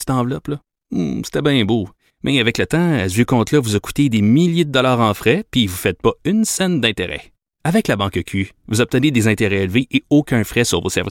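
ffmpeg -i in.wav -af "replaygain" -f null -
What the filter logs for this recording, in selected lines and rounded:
track_gain = -3.4 dB
track_peak = 0.563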